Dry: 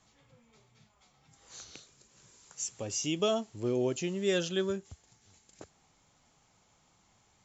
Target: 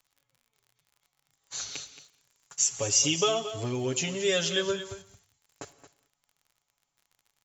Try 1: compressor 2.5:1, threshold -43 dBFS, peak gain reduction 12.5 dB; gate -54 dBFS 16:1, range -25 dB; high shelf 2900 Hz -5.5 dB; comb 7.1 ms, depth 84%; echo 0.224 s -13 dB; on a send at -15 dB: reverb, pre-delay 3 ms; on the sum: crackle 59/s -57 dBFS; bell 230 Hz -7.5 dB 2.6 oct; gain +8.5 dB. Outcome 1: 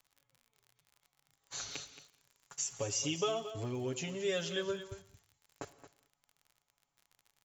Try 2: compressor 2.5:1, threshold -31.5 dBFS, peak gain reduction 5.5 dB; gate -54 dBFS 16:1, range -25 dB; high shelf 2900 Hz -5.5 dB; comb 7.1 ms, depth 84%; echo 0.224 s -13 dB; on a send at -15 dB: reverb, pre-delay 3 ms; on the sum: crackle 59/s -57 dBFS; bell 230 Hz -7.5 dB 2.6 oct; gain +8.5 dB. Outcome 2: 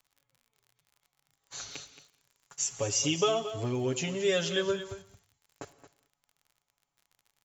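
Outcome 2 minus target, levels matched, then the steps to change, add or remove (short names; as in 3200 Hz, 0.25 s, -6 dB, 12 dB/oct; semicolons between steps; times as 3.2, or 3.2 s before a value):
8000 Hz band -3.5 dB
change: high shelf 2900 Hz +2 dB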